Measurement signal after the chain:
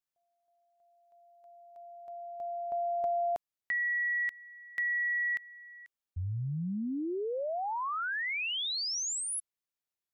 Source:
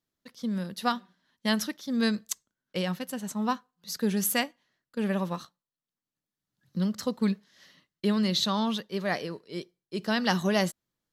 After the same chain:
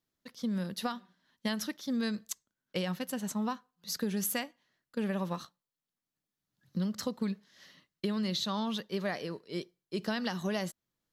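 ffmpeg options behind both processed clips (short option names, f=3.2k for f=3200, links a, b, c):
-af "equalizer=f=8.8k:t=o:w=0.26:g=-2.5,alimiter=limit=-18.5dB:level=0:latency=1:release=439,acompressor=threshold=-29dB:ratio=6"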